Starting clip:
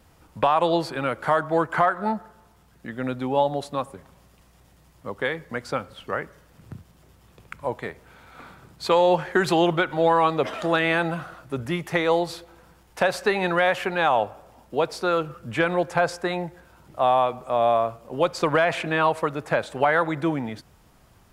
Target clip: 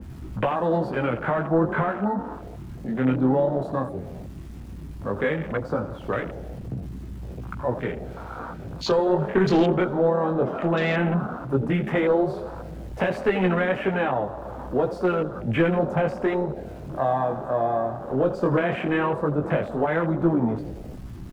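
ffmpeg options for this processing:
-filter_complex "[0:a]aeval=exprs='val(0)+0.5*0.0178*sgn(val(0))':c=same,highshelf=f=4.1k:g=-6,acrossover=split=410|2600[a][b][c];[b]acompressor=threshold=-33dB:ratio=4[d];[a][d][c]amix=inputs=3:normalize=0,flanger=delay=15.5:depth=7.5:speed=0.14,aeval=exprs='clip(val(0),-1,0.0631)':c=same,asplit=2[e][f];[f]asplit=6[g][h][i][j][k][l];[g]adelay=83,afreqshift=34,volume=-12dB[m];[h]adelay=166,afreqshift=68,volume=-16.7dB[n];[i]adelay=249,afreqshift=102,volume=-21.5dB[o];[j]adelay=332,afreqshift=136,volume=-26.2dB[p];[k]adelay=415,afreqshift=170,volume=-30.9dB[q];[l]adelay=498,afreqshift=204,volume=-35.7dB[r];[m][n][o][p][q][r]amix=inputs=6:normalize=0[s];[e][s]amix=inputs=2:normalize=0,afwtdn=0.0126,adynamicequalizer=threshold=0.00316:dfrequency=2300:dqfactor=0.7:tfrequency=2300:tqfactor=0.7:attack=5:release=100:ratio=0.375:range=3.5:mode=cutabove:tftype=highshelf,volume=8dB"

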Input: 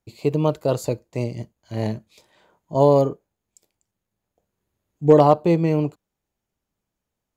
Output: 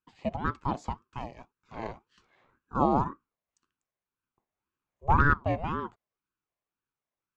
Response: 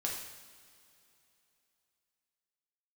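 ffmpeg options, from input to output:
-af "highpass=370,equalizer=f=370:t=q:w=4:g=4,equalizer=f=820:t=q:w=4:g=7,equalizer=f=1.3k:t=q:w=4:g=-7,equalizer=f=1.9k:t=q:w=4:g=7,equalizer=f=3.1k:t=q:w=4:g=-3,equalizer=f=4.5k:t=q:w=4:g=-9,lowpass=f=5.7k:w=0.5412,lowpass=f=5.7k:w=1.3066,aeval=exprs='val(0)*sin(2*PI*470*n/s+470*0.55/1.9*sin(2*PI*1.9*n/s))':c=same,volume=-6dB"

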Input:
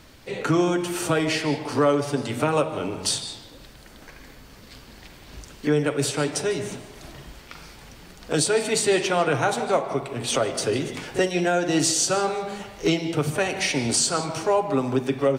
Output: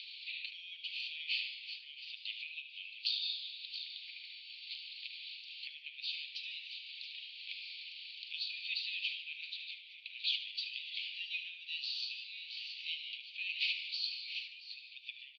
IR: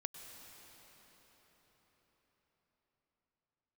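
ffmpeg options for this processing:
-filter_complex "[0:a]acompressor=mode=upward:threshold=-30dB:ratio=2.5,asplit=2[a][b];[b]aecho=0:1:672:0.178[c];[a][c]amix=inputs=2:normalize=0,acompressor=threshold=-26dB:ratio=6,asuperpass=centerf=3300:order=12:qfactor=1.5,asplit=2[d][e];[e]aecho=0:1:75|150|225|300:0.282|0.118|0.0497|0.0209[f];[d][f]amix=inputs=2:normalize=0"

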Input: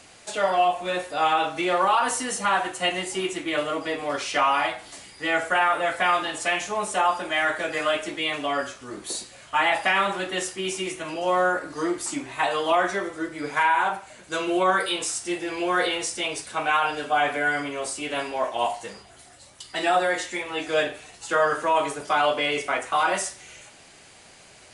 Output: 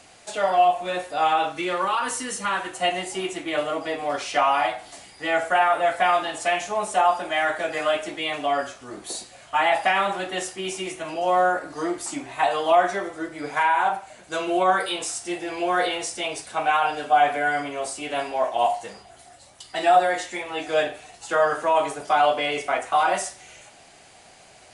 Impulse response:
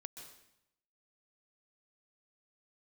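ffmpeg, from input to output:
-af "asetnsamples=n=441:p=0,asendcmd='1.52 equalizer g -8;2.73 equalizer g 8',equalizer=f=720:w=3.3:g=5,volume=-1.5dB"

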